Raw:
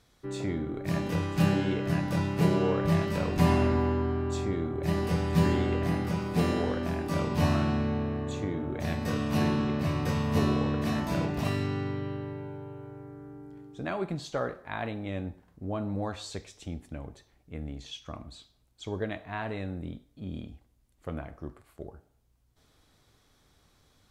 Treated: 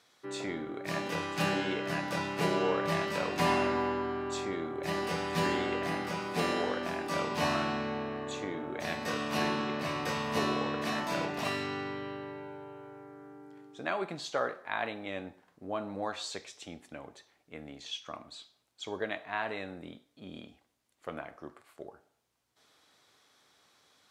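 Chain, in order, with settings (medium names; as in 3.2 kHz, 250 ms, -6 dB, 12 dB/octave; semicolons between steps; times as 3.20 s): frequency weighting A; trim +2 dB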